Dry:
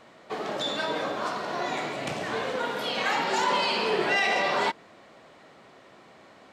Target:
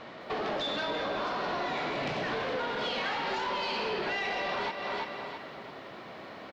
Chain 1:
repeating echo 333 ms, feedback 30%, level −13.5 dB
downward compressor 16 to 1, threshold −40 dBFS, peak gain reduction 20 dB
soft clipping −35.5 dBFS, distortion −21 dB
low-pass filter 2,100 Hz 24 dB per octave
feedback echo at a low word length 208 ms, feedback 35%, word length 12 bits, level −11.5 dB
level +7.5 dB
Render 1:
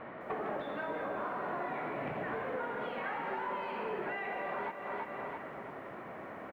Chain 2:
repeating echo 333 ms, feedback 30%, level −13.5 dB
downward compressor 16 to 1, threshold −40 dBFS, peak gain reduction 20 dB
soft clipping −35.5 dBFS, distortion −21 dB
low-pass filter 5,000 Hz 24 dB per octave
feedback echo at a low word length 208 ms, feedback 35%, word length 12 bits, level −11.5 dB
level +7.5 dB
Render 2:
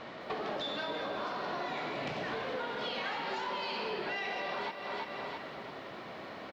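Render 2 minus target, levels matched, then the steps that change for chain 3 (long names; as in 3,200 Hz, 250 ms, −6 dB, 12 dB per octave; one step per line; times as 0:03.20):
downward compressor: peak gain reduction +6.5 dB
change: downward compressor 16 to 1, threshold −33 dBFS, peak gain reduction 13 dB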